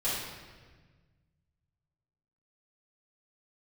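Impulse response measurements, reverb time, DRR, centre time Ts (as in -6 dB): 1.5 s, -12.5 dB, 87 ms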